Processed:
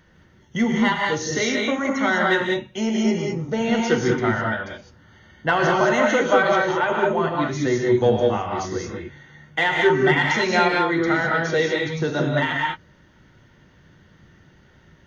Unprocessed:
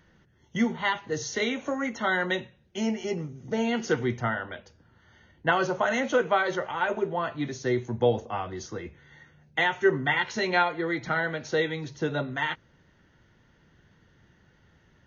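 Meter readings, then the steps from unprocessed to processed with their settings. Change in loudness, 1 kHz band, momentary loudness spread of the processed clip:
+7.0 dB, +7.0 dB, 10 LU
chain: in parallel at -3.5 dB: saturation -19 dBFS, distortion -14 dB; on the sum: gated-style reverb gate 230 ms rising, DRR -0.5 dB

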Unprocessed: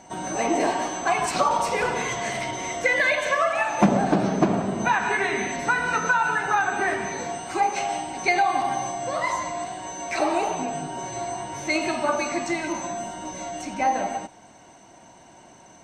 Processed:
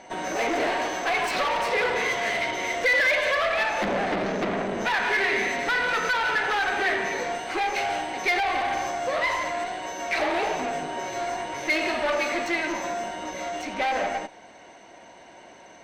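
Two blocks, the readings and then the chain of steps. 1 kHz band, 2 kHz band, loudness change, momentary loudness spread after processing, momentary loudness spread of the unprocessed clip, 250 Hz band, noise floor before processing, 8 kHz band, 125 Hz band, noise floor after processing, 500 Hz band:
-3.0 dB, +1.5 dB, -0.5 dB, 8 LU, 11 LU, -6.0 dB, -50 dBFS, -6.0 dB, -10.0 dB, -48 dBFS, -0.5 dB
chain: valve stage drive 27 dB, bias 0.55; graphic EQ 125/500/2000/4000/8000 Hz -6/+8/+9/+5/-6 dB

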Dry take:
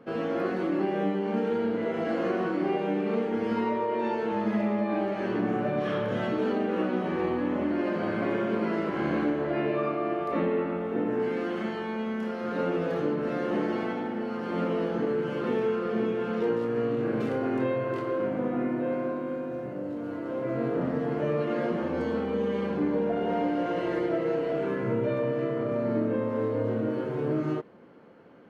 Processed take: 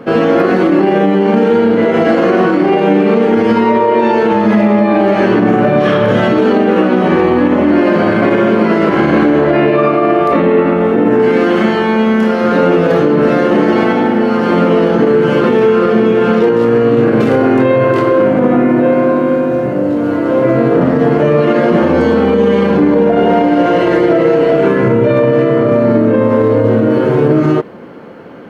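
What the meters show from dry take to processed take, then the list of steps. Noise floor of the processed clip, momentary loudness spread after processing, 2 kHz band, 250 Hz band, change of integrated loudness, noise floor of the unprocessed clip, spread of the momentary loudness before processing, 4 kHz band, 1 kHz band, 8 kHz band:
-14 dBFS, 2 LU, +18.5 dB, +18.0 dB, +18.0 dB, -34 dBFS, 4 LU, +18.5 dB, +18.5 dB, no reading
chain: loudness maximiser +21.5 dB; trim -1 dB

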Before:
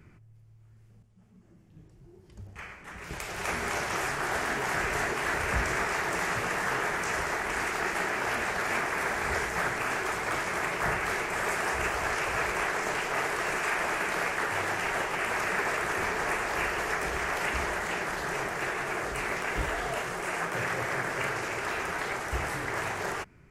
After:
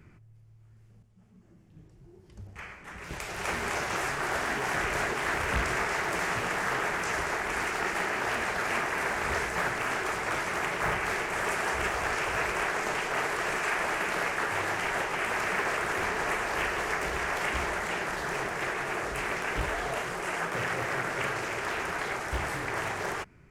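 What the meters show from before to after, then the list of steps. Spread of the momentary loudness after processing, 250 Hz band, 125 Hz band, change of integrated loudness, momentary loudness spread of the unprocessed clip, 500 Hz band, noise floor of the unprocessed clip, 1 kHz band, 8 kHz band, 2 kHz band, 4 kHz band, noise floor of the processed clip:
4 LU, 0.0 dB, -0.5 dB, 0.0 dB, 4 LU, 0.0 dB, -56 dBFS, 0.0 dB, -1.0 dB, 0.0 dB, +0.5 dB, -56 dBFS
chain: loudspeaker Doppler distortion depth 0.91 ms

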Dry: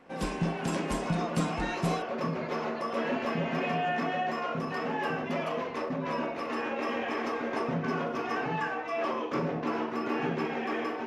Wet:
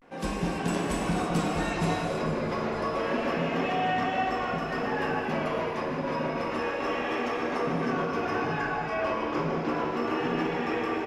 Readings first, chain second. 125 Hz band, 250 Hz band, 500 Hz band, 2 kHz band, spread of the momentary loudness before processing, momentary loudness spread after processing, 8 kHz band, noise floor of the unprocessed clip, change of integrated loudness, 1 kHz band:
+2.0 dB, +2.5 dB, +3.0 dB, +2.5 dB, 3 LU, 3 LU, +3.0 dB, -36 dBFS, +2.5 dB, +3.0 dB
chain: frequency-shifting echo 450 ms, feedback 60%, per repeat -60 Hz, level -15 dB; vibrato 0.31 Hz 58 cents; gated-style reverb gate 350 ms flat, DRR 1 dB

